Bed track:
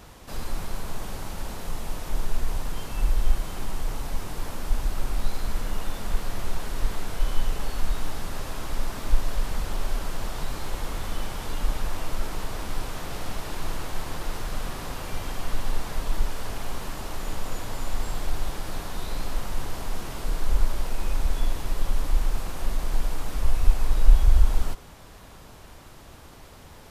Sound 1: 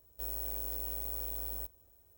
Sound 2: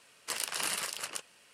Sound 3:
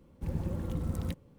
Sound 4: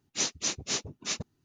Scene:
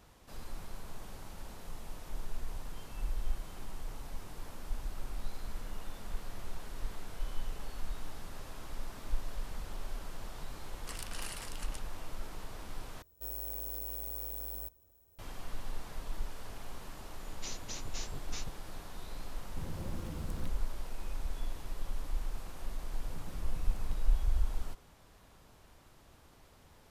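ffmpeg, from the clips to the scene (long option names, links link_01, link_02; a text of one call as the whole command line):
ffmpeg -i bed.wav -i cue0.wav -i cue1.wav -i cue2.wav -i cue3.wav -filter_complex "[3:a]asplit=2[link_01][link_02];[0:a]volume=-13dB[link_03];[4:a]acompressor=threshold=-36dB:ratio=6:attack=3.2:release=140:knee=1:detection=peak[link_04];[link_01]acompressor=threshold=-34dB:ratio=6:attack=3.2:release=140:knee=1:detection=peak[link_05];[link_03]asplit=2[link_06][link_07];[link_06]atrim=end=13.024[link_08];[1:a]atrim=end=2.17,asetpts=PTS-STARTPTS,volume=-2dB[link_09];[link_07]atrim=start=15.186[link_10];[2:a]atrim=end=1.53,asetpts=PTS-STARTPTS,volume=-11dB,afade=type=in:duration=0.004:curve=hsin,afade=type=out:start_time=1.526:duration=0.004:curve=hsin,adelay=10590[link_11];[link_04]atrim=end=1.44,asetpts=PTS-STARTPTS,volume=-4dB,afade=type=in:duration=0.004:curve=hsin,afade=type=out:start_time=1.436:duration=0.004:curve=hsin,adelay=17270[link_12];[link_05]atrim=end=1.38,asetpts=PTS-STARTPTS,volume=-3dB,afade=type=in:duration=0.004:curve=hsin,afade=type=out:start_time=1.376:duration=0.004:curve=hsin,adelay=19350[link_13];[link_02]atrim=end=1.38,asetpts=PTS-STARTPTS,volume=-16dB,afade=type=in:duration=0.004:curve=hsin,afade=type=out:start_time=1.376:duration=0.004:curve=hsin,adelay=22810[link_14];[link_08][link_09]acrossfade=duration=0.004:curve1=hsin:curve2=hsin[link_15];[link_15][link_10]acrossfade=duration=0.004:curve1=hsin:curve2=hsin[link_16];[link_16][link_11][link_12][link_13][link_14]amix=inputs=5:normalize=0" out.wav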